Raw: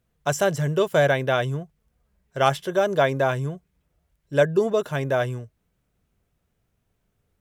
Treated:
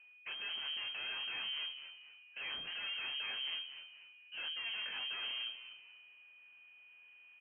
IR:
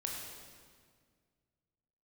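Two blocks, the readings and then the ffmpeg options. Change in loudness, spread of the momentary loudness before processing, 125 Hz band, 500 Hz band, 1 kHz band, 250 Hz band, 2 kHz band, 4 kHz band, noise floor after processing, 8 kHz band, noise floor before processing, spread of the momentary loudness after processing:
-16.5 dB, 11 LU, under -40 dB, under -40 dB, -27.5 dB, -38.0 dB, -13.0 dB, 0.0 dB, -61 dBFS, under -40 dB, -74 dBFS, 20 LU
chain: -filter_complex "[0:a]highpass=f=350:p=1,areverse,acompressor=threshold=-33dB:ratio=16,areverse,aeval=exprs='(tanh(282*val(0)+0.6)-tanh(0.6))/282':c=same,flanger=delay=20:depth=7.3:speed=1.2,aeval=exprs='val(0)+0.000282*sin(2*PI*730*n/s)':c=same,asplit=4[a][b][c][d];[b]adelay=243,afreqshift=83,volume=-14dB[e];[c]adelay=486,afreqshift=166,volume=-23.4dB[f];[d]adelay=729,afreqshift=249,volume=-32.7dB[g];[a][e][f][g]amix=inputs=4:normalize=0,aeval=exprs='0.0075*(cos(1*acos(clip(val(0)/0.0075,-1,1)))-cos(1*PI/2))+0.0015*(cos(4*acos(clip(val(0)/0.0075,-1,1)))-cos(4*PI/2))+0.00188*(cos(5*acos(clip(val(0)/0.0075,-1,1)))-cos(5*PI/2))':c=same,lowpass=f=2.7k:t=q:w=0.5098,lowpass=f=2.7k:t=q:w=0.6013,lowpass=f=2.7k:t=q:w=0.9,lowpass=f=2.7k:t=q:w=2.563,afreqshift=-3200,volume=6dB"

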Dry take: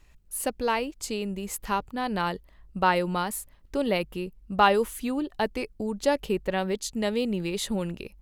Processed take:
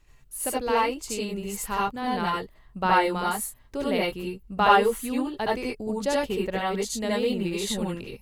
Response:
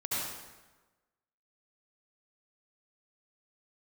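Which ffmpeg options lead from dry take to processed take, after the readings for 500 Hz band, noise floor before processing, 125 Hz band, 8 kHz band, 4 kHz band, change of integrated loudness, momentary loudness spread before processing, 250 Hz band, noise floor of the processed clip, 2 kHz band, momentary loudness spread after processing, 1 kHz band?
+1.0 dB, -56 dBFS, -0.5 dB, +2.5 dB, +1.5 dB, +2.0 dB, 10 LU, +0.5 dB, -55 dBFS, +2.0 dB, 10 LU, +3.0 dB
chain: -filter_complex "[1:a]atrim=start_sample=2205,atrim=end_sample=4410[a];[0:a][a]afir=irnorm=-1:irlink=0"

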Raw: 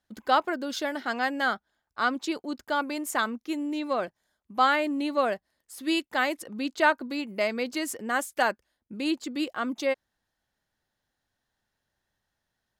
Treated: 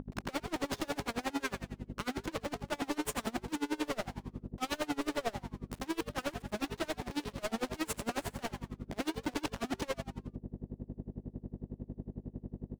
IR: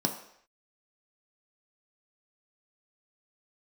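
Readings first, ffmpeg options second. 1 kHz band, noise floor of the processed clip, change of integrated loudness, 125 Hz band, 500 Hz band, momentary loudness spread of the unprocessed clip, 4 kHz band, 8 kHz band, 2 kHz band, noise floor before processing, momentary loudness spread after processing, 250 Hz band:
-13.0 dB, -61 dBFS, -10.5 dB, n/a, -9.5 dB, 10 LU, -8.0 dB, -4.0 dB, -13.0 dB, -83 dBFS, 10 LU, -6.5 dB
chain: -filter_complex "[0:a]bandreject=f=376:t=h:w=4,bandreject=f=752:t=h:w=4,bandreject=f=1.128k:t=h:w=4,bandreject=f=1.504k:t=h:w=4,bandreject=f=1.88k:t=h:w=4,bandreject=f=2.256k:t=h:w=4,bandreject=f=2.632k:t=h:w=4,bandreject=f=3.008k:t=h:w=4,bandreject=f=3.384k:t=h:w=4,bandreject=f=3.76k:t=h:w=4,bandreject=f=4.136k:t=h:w=4,bandreject=f=4.512k:t=h:w=4,bandreject=f=4.888k:t=h:w=4,bandreject=f=5.264k:t=h:w=4,bandreject=f=5.64k:t=h:w=4,bandreject=f=6.016k:t=h:w=4,bandreject=f=6.392k:t=h:w=4,acrossover=split=390|5700[a][b][c];[b]acompressor=threshold=-42dB:ratio=5[d];[a][d][c]amix=inputs=3:normalize=0,acrusher=bits=5:mix=0:aa=0.000001,aeval=exprs='val(0)+0.00562*(sin(2*PI*50*n/s)+sin(2*PI*2*50*n/s)/2+sin(2*PI*3*50*n/s)/3+sin(2*PI*4*50*n/s)/4+sin(2*PI*5*50*n/s)/5)':c=same,asplit=2[e][f];[f]highpass=f=720:p=1,volume=26dB,asoftclip=type=tanh:threshold=-20dB[g];[e][g]amix=inputs=2:normalize=0,lowpass=f=1.9k:p=1,volume=-6dB,volume=35.5dB,asoftclip=hard,volume=-35.5dB,asplit=2[h][i];[i]asplit=5[j][k][l][m][n];[j]adelay=84,afreqshift=130,volume=-9dB[o];[k]adelay=168,afreqshift=260,volume=-15.6dB[p];[l]adelay=252,afreqshift=390,volume=-22.1dB[q];[m]adelay=336,afreqshift=520,volume=-28.7dB[r];[n]adelay=420,afreqshift=650,volume=-35.2dB[s];[o][p][q][r][s]amix=inputs=5:normalize=0[t];[h][t]amix=inputs=2:normalize=0,aeval=exprs='val(0)*pow(10,-27*(0.5-0.5*cos(2*PI*11*n/s))/20)':c=same,volume=6dB"

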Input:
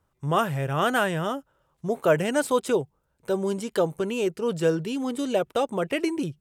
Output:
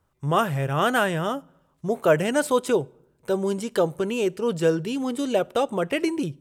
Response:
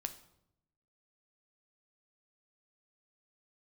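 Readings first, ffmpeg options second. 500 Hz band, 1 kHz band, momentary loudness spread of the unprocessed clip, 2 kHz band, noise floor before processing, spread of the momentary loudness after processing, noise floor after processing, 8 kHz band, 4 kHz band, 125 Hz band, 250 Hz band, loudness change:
+1.5 dB, +1.5 dB, 7 LU, +1.5 dB, -73 dBFS, 7 LU, -68 dBFS, +1.5 dB, +1.5 dB, +1.5 dB, +1.5 dB, +1.5 dB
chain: -filter_complex "[0:a]asplit=2[a][b];[1:a]atrim=start_sample=2205[c];[b][c]afir=irnorm=-1:irlink=0,volume=-11.5dB[d];[a][d]amix=inputs=2:normalize=0"

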